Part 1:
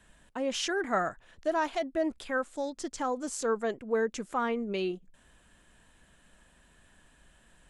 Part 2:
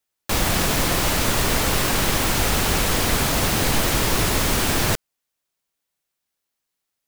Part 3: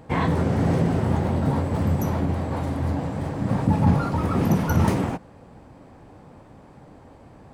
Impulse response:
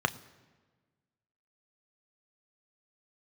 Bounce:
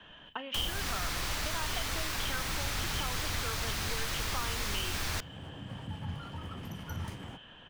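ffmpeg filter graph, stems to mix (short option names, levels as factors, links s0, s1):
-filter_complex "[0:a]acompressor=threshold=0.0126:ratio=6,lowpass=f=3100:t=q:w=13,volume=1.06,asplit=3[s0][s1][s2];[s1]volume=0.562[s3];[1:a]adelay=250,volume=0.376,asplit=2[s4][s5];[s5]volume=0.0708[s6];[2:a]adelay=2200,volume=0.188[s7];[s2]apad=whole_len=429269[s8];[s7][s8]sidechaingate=range=0.0224:threshold=0.002:ratio=16:detection=peak[s9];[3:a]atrim=start_sample=2205[s10];[s3][s6]amix=inputs=2:normalize=0[s11];[s11][s10]afir=irnorm=-1:irlink=0[s12];[s0][s4][s9][s12]amix=inputs=4:normalize=0,acrossover=split=120|1200|6300[s13][s14][s15][s16];[s13]acompressor=threshold=0.02:ratio=4[s17];[s14]acompressor=threshold=0.00501:ratio=4[s18];[s15]acompressor=threshold=0.02:ratio=4[s19];[s16]acompressor=threshold=0.00631:ratio=4[s20];[s17][s18][s19][s20]amix=inputs=4:normalize=0"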